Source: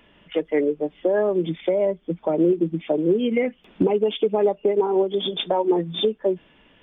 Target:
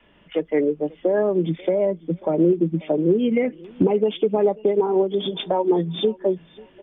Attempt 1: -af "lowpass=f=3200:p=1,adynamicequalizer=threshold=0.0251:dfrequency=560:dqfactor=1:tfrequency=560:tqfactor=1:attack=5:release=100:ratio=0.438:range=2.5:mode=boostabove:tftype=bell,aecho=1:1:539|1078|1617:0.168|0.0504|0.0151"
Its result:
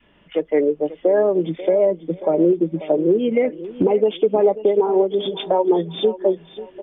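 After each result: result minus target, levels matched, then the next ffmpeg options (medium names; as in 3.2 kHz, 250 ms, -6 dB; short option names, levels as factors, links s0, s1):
125 Hz band -6.5 dB; echo-to-direct +8 dB
-af "lowpass=f=3200:p=1,adynamicequalizer=threshold=0.0251:dfrequency=150:dqfactor=1:tfrequency=150:tqfactor=1:attack=5:release=100:ratio=0.438:range=2.5:mode=boostabove:tftype=bell,aecho=1:1:539|1078|1617:0.168|0.0504|0.0151"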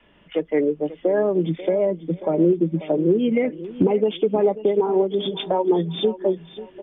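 echo-to-direct +8 dB
-af "lowpass=f=3200:p=1,adynamicequalizer=threshold=0.0251:dfrequency=150:dqfactor=1:tfrequency=150:tqfactor=1:attack=5:release=100:ratio=0.438:range=2.5:mode=boostabove:tftype=bell,aecho=1:1:539|1078:0.0668|0.0201"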